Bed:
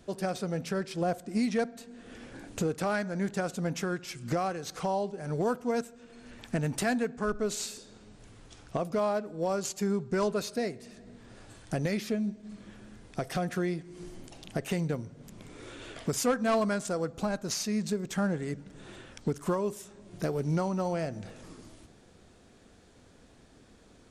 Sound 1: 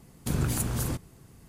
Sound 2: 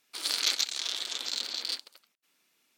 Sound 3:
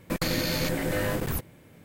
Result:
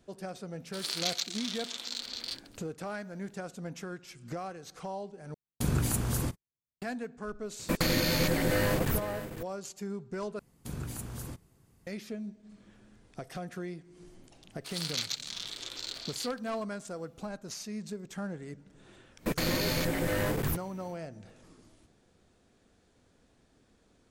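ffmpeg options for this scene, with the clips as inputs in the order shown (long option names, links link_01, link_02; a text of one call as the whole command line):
ffmpeg -i bed.wav -i cue0.wav -i cue1.wav -i cue2.wav -filter_complex "[2:a]asplit=2[link_01][link_02];[1:a]asplit=2[link_03][link_04];[3:a]asplit=2[link_05][link_06];[0:a]volume=-8.5dB[link_07];[link_03]agate=range=-50dB:threshold=-44dB:ratio=16:release=100:detection=peak[link_08];[link_05]aecho=1:1:505:0.237[link_09];[link_06]aeval=exprs='clip(val(0),-1,0.0531)':channel_layout=same[link_10];[link_07]asplit=3[link_11][link_12][link_13];[link_11]atrim=end=5.344[link_14];[link_08]atrim=end=1.48,asetpts=PTS-STARTPTS,volume=-1dB[link_15];[link_12]atrim=start=6.816:end=10.394[link_16];[link_04]atrim=end=1.48,asetpts=PTS-STARTPTS,volume=-11dB[link_17];[link_13]atrim=start=11.866[link_18];[link_01]atrim=end=2.77,asetpts=PTS-STARTPTS,volume=-5dB,afade=type=in:duration=0.004:curve=hsin,afade=type=out:start_time=2.766:duration=0.004:curve=hsin,adelay=590[link_19];[link_09]atrim=end=1.84,asetpts=PTS-STARTPTS,afade=type=in:duration=0.004:curve=hsin,afade=type=out:start_time=1.836:duration=0.004:curve=hsin,adelay=7590[link_20];[link_02]atrim=end=2.77,asetpts=PTS-STARTPTS,volume=-6.5dB,afade=type=in:duration=0.004:curve=hsin,afade=type=out:start_time=2.766:duration=0.004:curve=hsin,adelay=14510[link_21];[link_10]atrim=end=1.84,asetpts=PTS-STARTPTS,volume=-1.5dB,afade=type=in:duration=0.1,afade=type=out:start_time=1.74:duration=0.1,adelay=19160[link_22];[link_14][link_15]acrossfade=duration=0.004:curve1=hsin:curve2=hsin[link_23];[link_23][link_16]acrossfade=duration=0.004:curve1=hsin:curve2=hsin[link_24];[link_24][link_17]acrossfade=duration=0.004:curve1=hsin:curve2=hsin[link_25];[link_25][link_18]acrossfade=duration=0.004:curve1=hsin:curve2=hsin[link_26];[link_26][link_19][link_20][link_21][link_22]amix=inputs=5:normalize=0" out.wav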